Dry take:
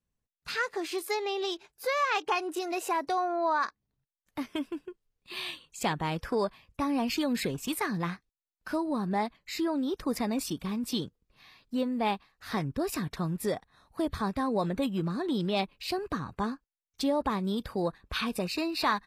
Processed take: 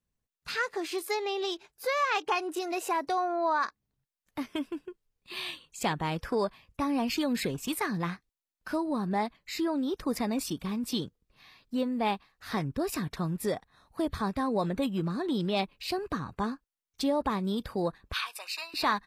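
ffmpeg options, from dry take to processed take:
ffmpeg -i in.wav -filter_complex "[0:a]asettb=1/sr,asplit=3[link_01][link_02][link_03];[link_01]atrim=end=18.134[link_04];[link_02]atrim=start=18.13:end=18.74,asetpts=PTS-STARTPTS,afade=type=in:duration=0.004:curve=qsin,afade=type=out:start_time=0.606:duration=0.004:curve=qsin,highpass=frequency=900:width=0.5412,highpass=frequency=900:width=1.3066[link_05];[link_03]atrim=start=18.736[link_06];[link_04][link_05]acrossfade=duration=0.004:curve1=hsin:curve2=qsin[link_07];[link_07][link_06]acrossfade=duration=0.004:curve1=qsin:curve2=hsin" out.wav

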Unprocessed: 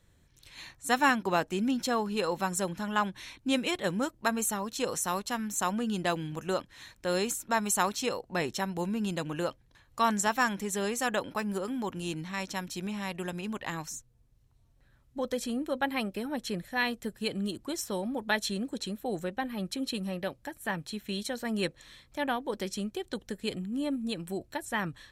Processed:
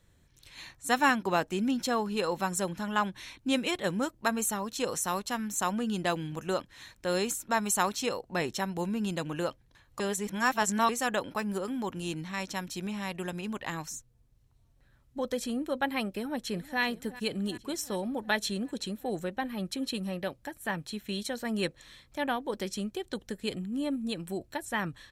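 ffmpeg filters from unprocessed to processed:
ffmpeg -i in.wav -filter_complex "[0:a]asplit=2[link_01][link_02];[link_02]afade=type=in:start_time=16.13:duration=0.01,afade=type=out:start_time=16.81:duration=0.01,aecho=0:1:380|760|1140|1520|1900|2280|2660|3040:0.141254|0.0988776|0.0692143|0.04845|0.033915|0.0237405|0.0166184|0.0116329[link_03];[link_01][link_03]amix=inputs=2:normalize=0,asplit=3[link_04][link_05][link_06];[link_04]atrim=end=10.002[link_07];[link_05]atrim=start=9.998:end=10.892,asetpts=PTS-STARTPTS,areverse[link_08];[link_06]atrim=start=10.888[link_09];[link_07][link_08]acrossfade=duration=0.004:curve1=hsin:curve2=hsin[link_10];[link_10][link_09]acrossfade=duration=0.004:curve1=hsin:curve2=hsin" out.wav

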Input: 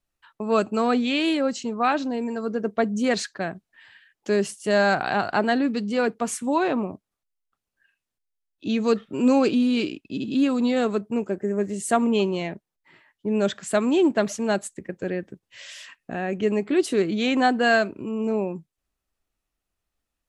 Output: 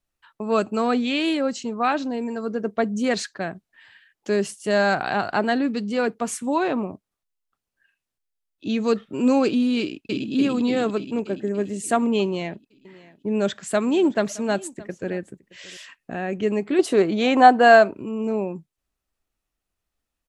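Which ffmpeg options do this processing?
ffmpeg -i in.wav -filter_complex "[0:a]asplit=2[link_01][link_02];[link_02]afade=type=in:start_time=9.8:duration=0.01,afade=type=out:start_time=10.32:duration=0.01,aecho=0:1:290|580|870|1160|1450|1740|2030|2320|2610|2900|3190:0.944061|0.61364|0.398866|0.259263|0.168521|0.109538|0.0712|0.04628|0.030082|0.0195533|0.0127096[link_03];[link_01][link_03]amix=inputs=2:normalize=0,asettb=1/sr,asplit=3[link_04][link_05][link_06];[link_04]atrim=end=12.234[link_07];[link_05]atrim=start=12.23:end=15.77,asetpts=PTS-STARTPTS,afade=type=in:duration=0.004:curve=qsin,afade=type=out:start_time=3.536:duration=0.004:curve=qsin,aecho=1:1:620:0.0891,atrim=end_sample=156114[link_08];[link_06]atrim=start=15.766[link_09];[link_07][link_08]acrossfade=duration=0.004:curve1=hsin:curve2=qsin[link_10];[link_10][link_09]acrossfade=duration=0.004:curve1=qsin:curve2=hsin,asettb=1/sr,asplit=3[link_11][link_12][link_13];[link_11]atrim=end=16.794[link_14];[link_12]atrim=start=16.79:end=17.95,asetpts=PTS-STARTPTS,afade=type=in:duration=0.004:curve=qsin,afade=type=out:start_time=1.156:duration=0.004:curve=qsin,equalizer=frequency=780:width_type=o:width=1.6:gain=10[link_15];[link_13]atrim=start=17.946[link_16];[link_14][link_15]acrossfade=duration=0.004:curve1=hsin:curve2=qsin[link_17];[link_17][link_16]acrossfade=duration=0.004:curve1=qsin:curve2=hsin" out.wav

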